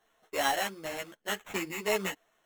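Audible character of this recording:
aliases and images of a low sample rate 4,800 Hz, jitter 0%
a shimmering, thickened sound

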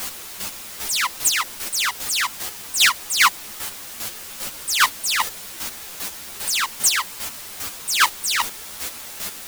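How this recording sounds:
a quantiser's noise floor 6 bits, dither triangular
chopped level 2.5 Hz, depth 60%, duty 20%
a shimmering, thickened sound

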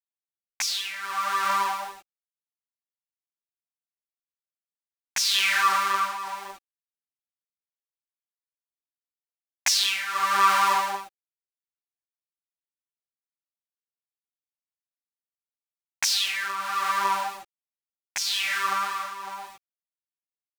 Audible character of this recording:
a quantiser's noise floor 8 bits, dither none
tremolo triangle 0.77 Hz, depth 75%
a shimmering, thickened sound

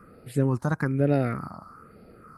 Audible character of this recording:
phaser sweep stages 4, 1.1 Hz, lowest notch 440–1,100 Hz

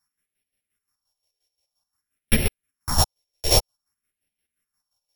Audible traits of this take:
a buzz of ramps at a fixed pitch in blocks of 8 samples
phaser sweep stages 4, 0.52 Hz, lowest notch 210–1,100 Hz
chopped level 5.7 Hz, depth 65%, duty 40%
a shimmering, thickened sound

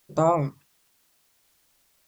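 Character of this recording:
phaser sweep stages 2, 1.2 Hz, lowest notch 560–2,100 Hz
a quantiser's noise floor 12 bits, dither triangular

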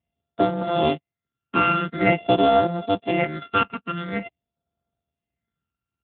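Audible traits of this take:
a buzz of ramps at a fixed pitch in blocks of 64 samples
phaser sweep stages 12, 0.47 Hz, lowest notch 610–2,400 Hz
tremolo triangle 1.5 Hz, depth 45%
Speex

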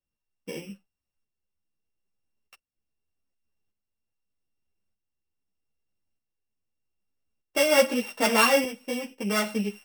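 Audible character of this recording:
a buzz of ramps at a fixed pitch in blocks of 16 samples
tremolo saw up 0.81 Hz, depth 60%
a shimmering, thickened sound

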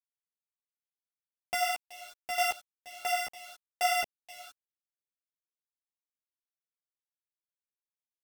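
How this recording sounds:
a buzz of ramps at a fixed pitch in blocks of 16 samples
tremolo saw down 2.1 Hz, depth 65%
a quantiser's noise floor 8 bits, dither none
a shimmering, thickened sound

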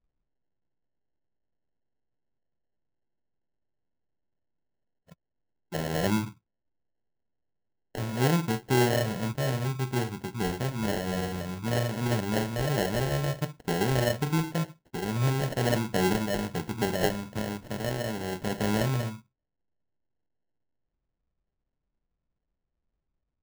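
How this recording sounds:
aliases and images of a low sample rate 1,200 Hz, jitter 0%

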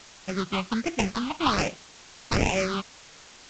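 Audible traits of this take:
aliases and images of a low sample rate 1,800 Hz, jitter 20%
phaser sweep stages 6, 1.3 Hz, lowest notch 440–1,200 Hz
a quantiser's noise floor 8 bits, dither triangular
G.722

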